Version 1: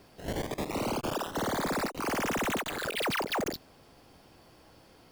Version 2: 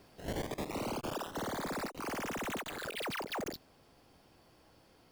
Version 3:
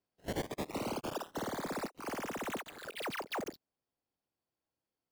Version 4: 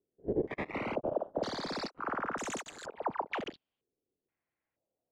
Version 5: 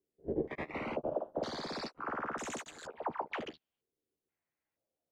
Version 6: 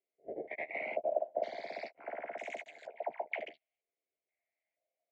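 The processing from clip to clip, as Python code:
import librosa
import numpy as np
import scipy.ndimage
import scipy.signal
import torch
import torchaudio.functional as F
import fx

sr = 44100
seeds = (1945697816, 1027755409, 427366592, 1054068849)

y1 = fx.rider(x, sr, range_db=3, speed_s=0.5)
y1 = y1 * 10.0 ** (-6.5 / 20.0)
y2 = fx.low_shelf(y1, sr, hz=76.0, db=-6.5)
y2 = fx.upward_expand(y2, sr, threshold_db=-57.0, expansion=2.5)
y2 = y2 * 10.0 ** (3.5 / 20.0)
y3 = fx.filter_held_lowpass(y2, sr, hz=2.1, low_hz=410.0, high_hz=6900.0)
y4 = fx.doubler(y3, sr, ms=13.0, db=-6.5)
y4 = y4 * 10.0 ** (-3.5 / 20.0)
y5 = fx.double_bandpass(y4, sr, hz=1200.0, octaves=1.7)
y5 = y5 * 10.0 ** (8.0 / 20.0)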